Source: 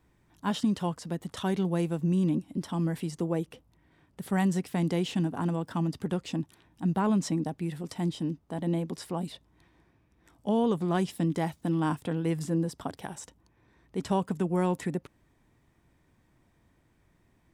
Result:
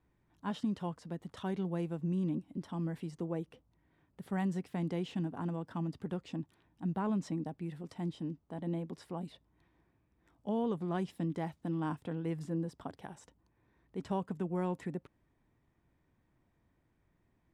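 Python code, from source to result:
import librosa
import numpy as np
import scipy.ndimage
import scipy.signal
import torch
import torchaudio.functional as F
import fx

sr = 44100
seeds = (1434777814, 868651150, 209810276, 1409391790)

y = fx.high_shelf(x, sr, hz=4500.0, db=-11.5)
y = y * 10.0 ** (-7.5 / 20.0)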